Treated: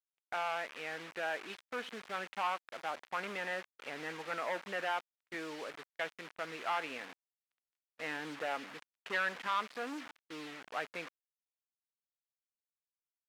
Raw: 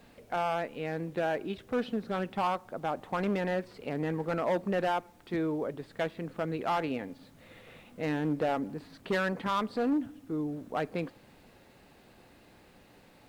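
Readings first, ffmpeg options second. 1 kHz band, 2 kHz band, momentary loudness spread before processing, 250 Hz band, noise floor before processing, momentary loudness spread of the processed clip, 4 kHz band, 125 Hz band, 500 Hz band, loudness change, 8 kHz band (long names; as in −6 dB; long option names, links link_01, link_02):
−5.0 dB, +0.5 dB, 8 LU, −16.5 dB, −59 dBFS, 10 LU, 0.0 dB, −20.5 dB, −10.5 dB, −6.5 dB, can't be measured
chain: -af "acrusher=bits=6:mix=0:aa=0.000001,bandpass=frequency=2000:width_type=q:width=1:csg=0,agate=range=-29dB:threshold=-55dB:ratio=16:detection=peak,volume=1dB"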